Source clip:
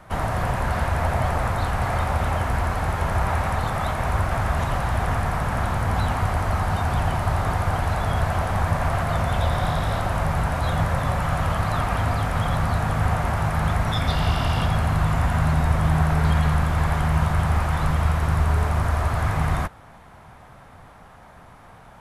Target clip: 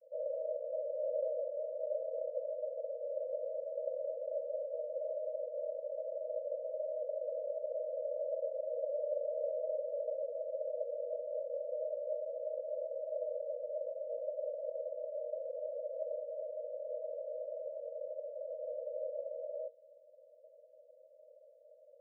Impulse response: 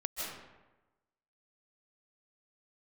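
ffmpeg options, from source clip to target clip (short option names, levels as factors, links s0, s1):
-af "afreqshift=-100,asuperpass=centerf=550:order=20:qfactor=3.3,volume=0.596"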